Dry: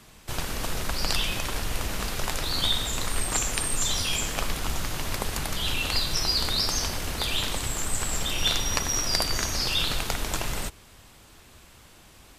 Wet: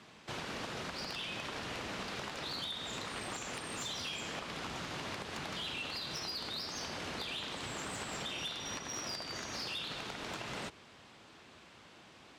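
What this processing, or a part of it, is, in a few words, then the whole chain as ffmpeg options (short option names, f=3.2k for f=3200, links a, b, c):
AM radio: -af "highpass=160,lowpass=4.4k,acompressor=threshold=-33dB:ratio=10,asoftclip=type=tanh:threshold=-30.5dB,volume=-2dB"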